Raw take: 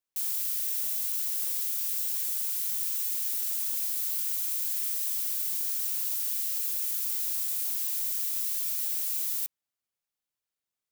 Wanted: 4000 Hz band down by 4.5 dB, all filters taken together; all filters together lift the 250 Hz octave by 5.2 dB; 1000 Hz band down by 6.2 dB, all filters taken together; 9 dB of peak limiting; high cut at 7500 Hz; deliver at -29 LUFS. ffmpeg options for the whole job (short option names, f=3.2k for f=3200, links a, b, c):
-af "lowpass=7.5k,equalizer=f=250:t=o:g=7.5,equalizer=f=1k:t=o:g=-8.5,equalizer=f=4k:t=o:g=-5,volume=15.5dB,alimiter=limit=-22.5dB:level=0:latency=1"